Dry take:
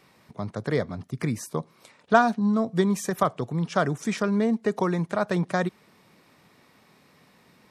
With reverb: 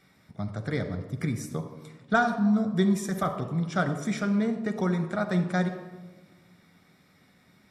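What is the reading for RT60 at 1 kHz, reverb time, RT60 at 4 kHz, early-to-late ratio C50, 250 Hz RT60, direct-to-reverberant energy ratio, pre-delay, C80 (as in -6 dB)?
1.1 s, 1.3 s, 0.80 s, 9.0 dB, 2.0 s, 5.5 dB, 11 ms, 11.0 dB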